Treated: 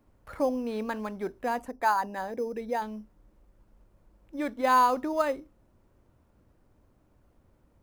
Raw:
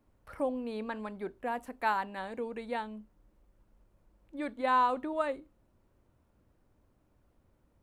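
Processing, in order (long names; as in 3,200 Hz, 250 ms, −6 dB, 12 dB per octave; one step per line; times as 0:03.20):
0:01.62–0:02.82: spectral envelope exaggerated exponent 1.5
in parallel at −11 dB: sample-rate reduction 5,600 Hz, jitter 0%
on the sum: level +3 dB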